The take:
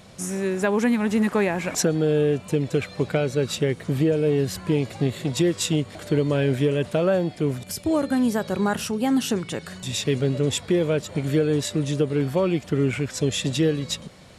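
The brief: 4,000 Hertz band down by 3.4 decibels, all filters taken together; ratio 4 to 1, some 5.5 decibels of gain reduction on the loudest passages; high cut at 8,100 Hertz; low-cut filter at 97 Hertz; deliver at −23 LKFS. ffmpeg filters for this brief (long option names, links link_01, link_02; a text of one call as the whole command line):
ffmpeg -i in.wav -af "highpass=97,lowpass=8100,equalizer=frequency=4000:width_type=o:gain=-4,acompressor=threshold=-23dB:ratio=4,volume=5dB" out.wav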